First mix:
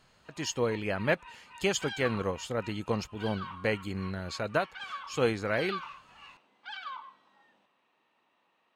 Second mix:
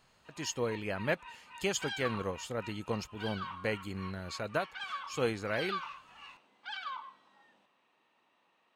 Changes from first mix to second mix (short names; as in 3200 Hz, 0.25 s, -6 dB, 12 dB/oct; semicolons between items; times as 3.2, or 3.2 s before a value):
speech -4.5 dB; master: add high shelf 7500 Hz +6 dB